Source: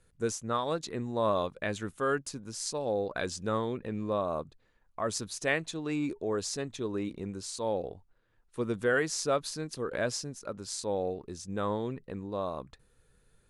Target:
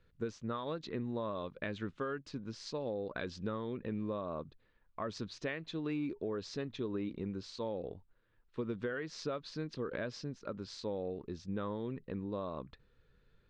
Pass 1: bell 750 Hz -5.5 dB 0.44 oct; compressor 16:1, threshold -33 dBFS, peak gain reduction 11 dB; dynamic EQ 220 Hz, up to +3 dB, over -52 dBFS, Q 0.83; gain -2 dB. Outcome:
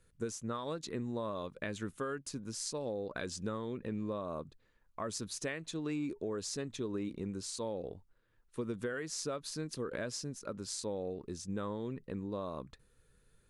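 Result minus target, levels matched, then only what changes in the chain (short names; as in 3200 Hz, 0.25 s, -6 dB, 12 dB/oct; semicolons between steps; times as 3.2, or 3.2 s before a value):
4000 Hz band +2.5 dB
add first: LPF 4300 Hz 24 dB/oct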